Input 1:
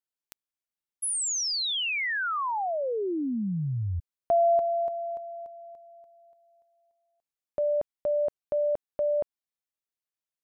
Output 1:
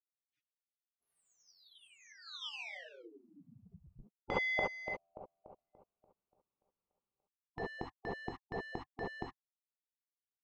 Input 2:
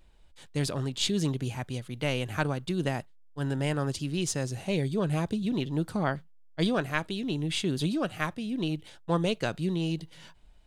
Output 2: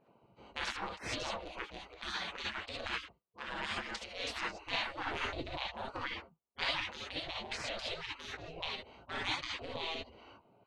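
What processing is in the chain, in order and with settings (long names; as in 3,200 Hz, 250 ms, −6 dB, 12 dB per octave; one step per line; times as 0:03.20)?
adaptive Wiener filter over 25 samples
reverb whose tail is shaped and stops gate 90 ms rising, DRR −4.5 dB
dynamic equaliser 670 Hz, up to +3 dB, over −39 dBFS, Q 1.3
gate on every frequency bin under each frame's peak −25 dB weak
high-frequency loss of the air 170 metres
level +6 dB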